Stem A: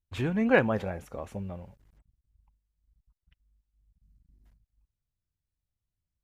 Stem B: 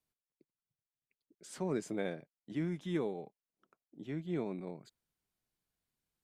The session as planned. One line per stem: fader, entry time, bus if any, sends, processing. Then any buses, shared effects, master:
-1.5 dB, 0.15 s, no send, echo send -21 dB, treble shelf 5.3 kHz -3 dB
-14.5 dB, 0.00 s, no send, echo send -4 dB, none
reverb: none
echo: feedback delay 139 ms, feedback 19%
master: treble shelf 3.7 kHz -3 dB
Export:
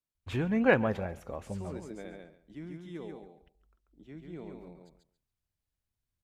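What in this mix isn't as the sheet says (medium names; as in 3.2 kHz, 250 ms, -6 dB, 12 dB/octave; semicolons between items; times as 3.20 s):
stem B -14.5 dB -> -8.0 dB; master: missing treble shelf 3.7 kHz -3 dB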